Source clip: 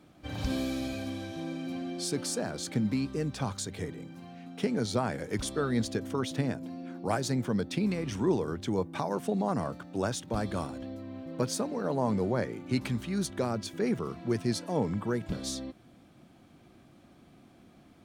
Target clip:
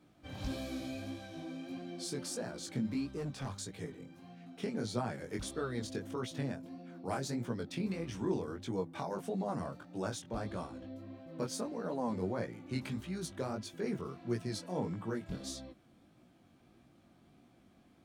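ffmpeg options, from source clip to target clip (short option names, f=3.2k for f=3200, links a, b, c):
-filter_complex "[0:a]flanger=delay=16.5:depth=6.1:speed=1.6,asettb=1/sr,asplit=3[a][b][c];[a]atrim=end=3.174[d];[b]atrim=start=3.17:end=3.59,asetpts=PTS-STARTPTS,afade=t=in:d=0.004:c=qsin,afade=t=out:st=0.416:d=0.004:c=qsin,asoftclip=type=hard:threshold=-30.5dB[e];[c]atrim=start=3.586[f];[d][e]acrossfade=d=0.004:c1=hsin:c2=qsin[g];[g][f]acrossfade=d=0.004:c1=qsin:c2=hsin,asettb=1/sr,asplit=3[h][i][j];[h]atrim=end=10.224[k];[i]atrim=start=10.22:end=10.95,asetpts=PTS-STARTPTS,afade=t=in:d=0.004:c=qsin,afade=t=out:st=0.726:d=0.004:c=qsin,highshelf=f=7.8k:g=-8[l];[j]atrim=start=10.946[m];[k][l]acrossfade=d=0.004:c1=hsin:c2=qsin[n];[n][m]acrossfade=d=0.004:c1=qsin:c2=hsin,volume=-4dB"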